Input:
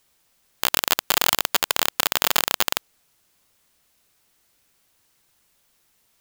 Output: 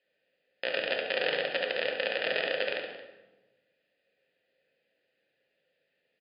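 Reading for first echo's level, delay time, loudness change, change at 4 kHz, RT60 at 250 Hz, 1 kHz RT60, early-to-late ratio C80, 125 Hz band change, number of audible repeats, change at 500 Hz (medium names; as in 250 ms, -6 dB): -9.0 dB, 71 ms, -9.5 dB, -10.5 dB, 1.5 s, 0.95 s, 5.5 dB, -11.5 dB, 2, +3.5 dB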